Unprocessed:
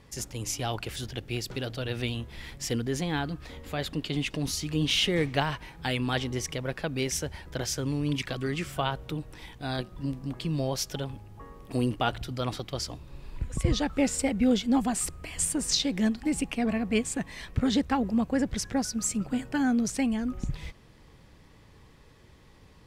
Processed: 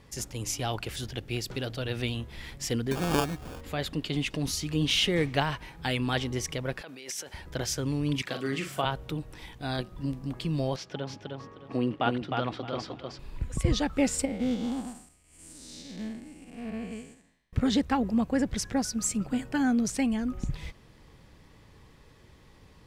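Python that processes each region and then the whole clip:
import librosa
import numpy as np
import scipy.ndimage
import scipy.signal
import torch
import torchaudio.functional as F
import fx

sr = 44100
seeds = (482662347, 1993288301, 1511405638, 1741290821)

y = fx.chain(x, sr, fx.peak_eq(hz=1600.0, db=8.5, octaves=1.9),
    fx.sample_hold(seeds[0], rate_hz=2000.0, jitter_pct=0), at=(2.91, 3.61))
y = fx.chain(y, sr, fx.over_compress(threshold_db=-36.0, ratio=-1.0),
    fx.highpass(hz=240.0, slope=12),
    fx.low_shelf(hz=460.0, db=-10.0), at=(6.81, 7.34))
y = fx.chain(y, sr, fx.highpass(hz=170.0, slope=12),
    fx.doubler(ms=44.0, db=-7.0), at=(8.22, 8.85))
y = fx.chain(y, sr, fx.bandpass_edges(low_hz=150.0, high_hz=3000.0),
    fx.echo_feedback(ms=309, feedback_pct=23, wet_db=-4.0), at=(10.76, 13.19))
y = fx.chain(y, sr, fx.spec_blur(span_ms=282.0),
    fx.upward_expand(threshold_db=-46.0, expansion=2.5), at=(14.25, 17.53))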